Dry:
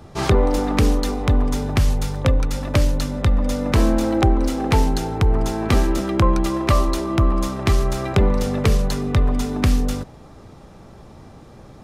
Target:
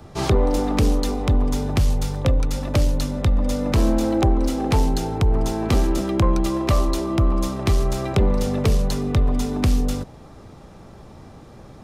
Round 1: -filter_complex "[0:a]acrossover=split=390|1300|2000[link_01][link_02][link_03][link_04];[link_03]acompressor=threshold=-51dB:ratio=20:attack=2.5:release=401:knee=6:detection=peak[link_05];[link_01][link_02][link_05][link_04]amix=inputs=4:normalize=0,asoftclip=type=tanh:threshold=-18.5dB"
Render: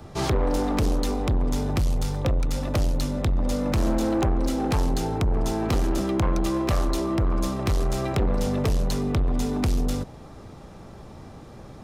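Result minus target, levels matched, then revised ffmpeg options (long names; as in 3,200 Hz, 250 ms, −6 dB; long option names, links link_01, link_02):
soft clipping: distortion +12 dB
-filter_complex "[0:a]acrossover=split=390|1300|2000[link_01][link_02][link_03][link_04];[link_03]acompressor=threshold=-51dB:ratio=20:attack=2.5:release=401:knee=6:detection=peak[link_05];[link_01][link_02][link_05][link_04]amix=inputs=4:normalize=0,asoftclip=type=tanh:threshold=-8.5dB"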